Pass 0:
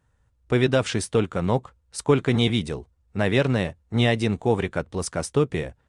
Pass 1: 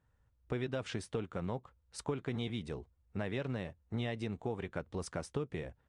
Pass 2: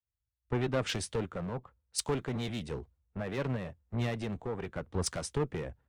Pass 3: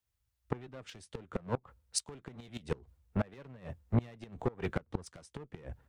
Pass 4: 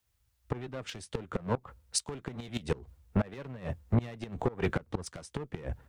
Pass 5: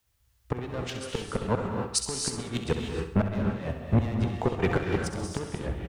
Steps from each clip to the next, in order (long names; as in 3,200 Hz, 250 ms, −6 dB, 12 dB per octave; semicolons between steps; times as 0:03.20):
high-shelf EQ 6,600 Hz −11 dB; downward compressor 4 to 1, threshold −28 dBFS, peak gain reduction 12.5 dB; level −7 dB
in parallel at +2 dB: brickwall limiter −29 dBFS, peak gain reduction 7 dB; on the sum: asymmetric clip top −31.5 dBFS; multiband upward and downward expander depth 100%
gate with flip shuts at −26 dBFS, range −25 dB; level +7.5 dB
brickwall limiter −25.5 dBFS, peak gain reduction 10.5 dB; level +8 dB
repeating echo 66 ms, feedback 51%, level −10 dB; reverb whose tail is shaped and stops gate 330 ms rising, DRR 2 dB; level +3.5 dB